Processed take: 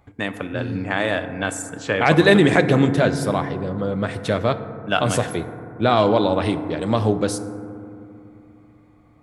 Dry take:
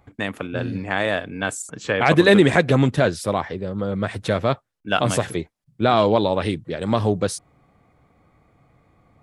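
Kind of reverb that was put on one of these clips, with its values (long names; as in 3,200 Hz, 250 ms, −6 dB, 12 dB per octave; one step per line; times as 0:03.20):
feedback delay network reverb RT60 2.7 s, low-frequency decay 1.4×, high-frequency decay 0.25×, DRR 9.5 dB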